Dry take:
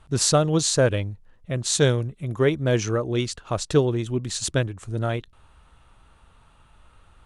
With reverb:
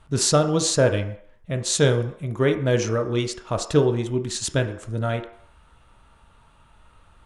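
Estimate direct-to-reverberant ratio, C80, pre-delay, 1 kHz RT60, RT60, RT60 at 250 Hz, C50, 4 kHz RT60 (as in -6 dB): 5.5 dB, 13.5 dB, 3 ms, 0.60 s, 0.60 s, 0.45 s, 10.5 dB, 0.65 s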